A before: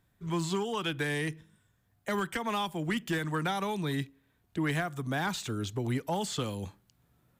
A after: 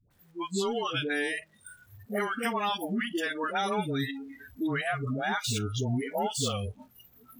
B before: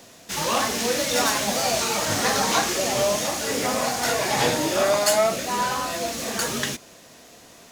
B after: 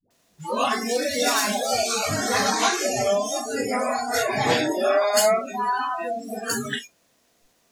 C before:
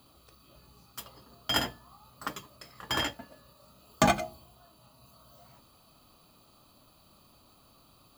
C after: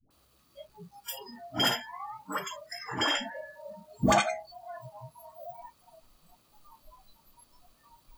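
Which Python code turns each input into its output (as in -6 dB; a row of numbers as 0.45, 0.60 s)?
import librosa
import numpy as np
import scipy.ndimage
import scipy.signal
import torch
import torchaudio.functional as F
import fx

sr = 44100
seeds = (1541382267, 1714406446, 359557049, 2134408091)

y = x + 0.5 * 10.0 ** (-30.5 / 20.0) * np.sign(x)
y = fx.noise_reduce_blind(y, sr, reduce_db=30)
y = fx.dispersion(y, sr, late='highs', ms=107.0, hz=520.0)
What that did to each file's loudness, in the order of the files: +2.0, -0.5, +0.5 LU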